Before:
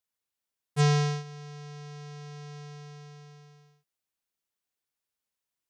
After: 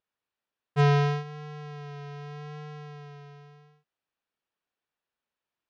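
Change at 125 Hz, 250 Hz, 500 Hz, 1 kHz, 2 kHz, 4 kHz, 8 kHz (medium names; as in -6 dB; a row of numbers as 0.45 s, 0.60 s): +1.5 dB, no reading, +4.5 dB, +4.0 dB, +3.0 dB, -3.0 dB, under -10 dB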